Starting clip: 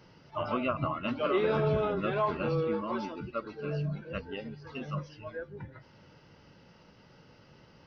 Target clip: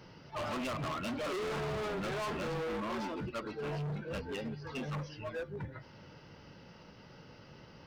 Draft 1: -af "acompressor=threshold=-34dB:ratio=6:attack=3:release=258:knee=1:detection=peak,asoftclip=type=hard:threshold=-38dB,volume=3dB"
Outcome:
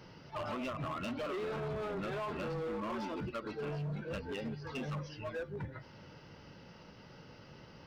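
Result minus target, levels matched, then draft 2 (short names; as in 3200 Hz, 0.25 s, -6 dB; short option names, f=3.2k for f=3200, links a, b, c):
compressor: peak gain reduction +12.5 dB
-af "asoftclip=type=hard:threshold=-38dB,volume=3dB"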